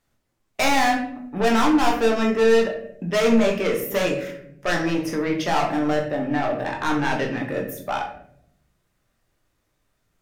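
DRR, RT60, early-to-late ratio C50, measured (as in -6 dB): 0.5 dB, 0.70 s, 7.5 dB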